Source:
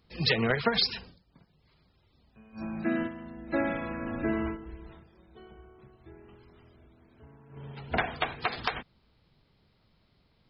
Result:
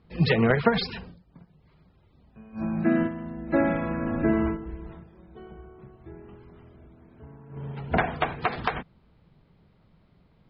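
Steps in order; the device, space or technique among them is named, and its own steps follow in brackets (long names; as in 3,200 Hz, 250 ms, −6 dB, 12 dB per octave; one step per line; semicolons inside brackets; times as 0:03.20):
phone in a pocket (low-pass filter 3,800 Hz 12 dB per octave; parametric band 170 Hz +6 dB 0.32 octaves; high-shelf EQ 2,400 Hz −11 dB)
level +6.5 dB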